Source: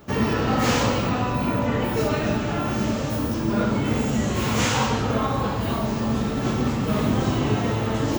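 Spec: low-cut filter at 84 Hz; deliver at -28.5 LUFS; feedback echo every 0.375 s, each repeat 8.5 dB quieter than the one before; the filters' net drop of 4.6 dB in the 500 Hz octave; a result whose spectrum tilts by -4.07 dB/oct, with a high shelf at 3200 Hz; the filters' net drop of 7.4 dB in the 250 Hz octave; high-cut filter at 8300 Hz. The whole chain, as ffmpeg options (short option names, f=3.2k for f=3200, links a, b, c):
-af "highpass=84,lowpass=8.3k,equalizer=f=250:t=o:g=-8.5,equalizer=f=500:t=o:g=-3.5,highshelf=f=3.2k:g=6,aecho=1:1:375|750|1125|1500:0.376|0.143|0.0543|0.0206,volume=-3.5dB"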